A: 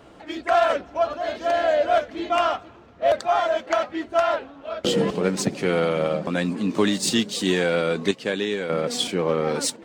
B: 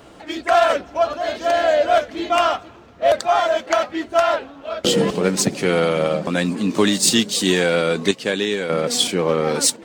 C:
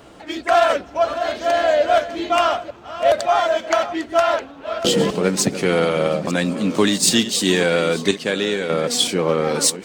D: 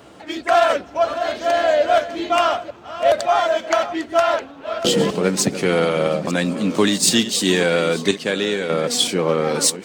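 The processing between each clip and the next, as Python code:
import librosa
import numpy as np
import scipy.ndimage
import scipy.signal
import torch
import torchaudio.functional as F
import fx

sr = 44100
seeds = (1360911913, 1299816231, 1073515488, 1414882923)

y1 = fx.high_shelf(x, sr, hz=4600.0, db=7.5)
y1 = y1 * librosa.db_to_amplitude(3.5)
y2 = fx.reverse_delay(y1, sr, ms=451, wet_db=-13.5)
y3 = scipy.signal.sosfilt(scipy.signal.butter(2, 70.0, 'highpass', fs=sr, output='sos'), y2)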